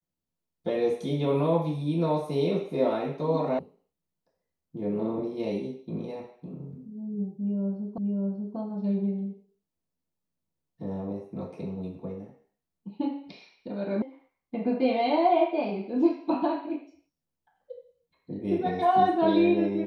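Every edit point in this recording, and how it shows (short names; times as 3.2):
3.59 sound cut off
7.98 repeat of the last 0.59 s
14.02 sound cut off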